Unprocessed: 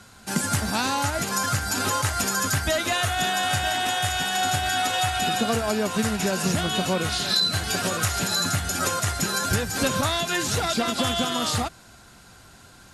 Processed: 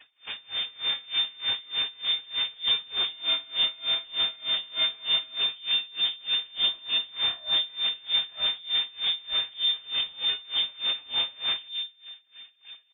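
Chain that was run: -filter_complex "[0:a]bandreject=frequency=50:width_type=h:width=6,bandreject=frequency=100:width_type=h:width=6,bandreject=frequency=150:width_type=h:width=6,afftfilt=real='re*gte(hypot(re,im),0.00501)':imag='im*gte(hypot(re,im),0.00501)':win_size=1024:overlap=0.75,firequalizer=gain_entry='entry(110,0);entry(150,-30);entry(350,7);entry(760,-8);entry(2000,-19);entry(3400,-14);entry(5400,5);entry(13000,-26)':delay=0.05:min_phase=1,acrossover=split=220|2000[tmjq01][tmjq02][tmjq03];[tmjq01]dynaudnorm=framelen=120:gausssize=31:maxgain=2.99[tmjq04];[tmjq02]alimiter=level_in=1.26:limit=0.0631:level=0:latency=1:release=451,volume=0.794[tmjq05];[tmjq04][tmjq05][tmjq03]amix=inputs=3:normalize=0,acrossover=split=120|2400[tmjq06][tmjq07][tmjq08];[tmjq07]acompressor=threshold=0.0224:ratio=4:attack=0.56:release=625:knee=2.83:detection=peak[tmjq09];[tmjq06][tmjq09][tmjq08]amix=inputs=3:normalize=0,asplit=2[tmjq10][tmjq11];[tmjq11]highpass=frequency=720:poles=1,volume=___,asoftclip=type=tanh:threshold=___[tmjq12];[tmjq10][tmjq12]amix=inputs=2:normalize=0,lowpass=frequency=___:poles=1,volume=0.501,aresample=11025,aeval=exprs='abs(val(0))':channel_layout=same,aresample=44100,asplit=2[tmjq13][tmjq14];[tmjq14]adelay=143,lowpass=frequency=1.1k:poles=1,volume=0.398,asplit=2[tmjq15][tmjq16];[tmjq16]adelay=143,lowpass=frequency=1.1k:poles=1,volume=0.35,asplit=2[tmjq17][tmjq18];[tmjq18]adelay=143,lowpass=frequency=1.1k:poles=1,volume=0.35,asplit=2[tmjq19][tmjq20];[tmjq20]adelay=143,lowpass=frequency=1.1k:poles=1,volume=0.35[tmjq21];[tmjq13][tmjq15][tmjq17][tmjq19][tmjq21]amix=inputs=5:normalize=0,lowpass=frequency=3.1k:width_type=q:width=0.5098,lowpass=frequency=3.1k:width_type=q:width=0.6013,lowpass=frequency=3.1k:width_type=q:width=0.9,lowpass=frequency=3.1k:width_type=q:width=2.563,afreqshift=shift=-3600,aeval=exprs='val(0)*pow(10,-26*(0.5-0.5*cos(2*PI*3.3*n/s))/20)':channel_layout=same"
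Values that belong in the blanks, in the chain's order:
15.8, 0.335, 2.7k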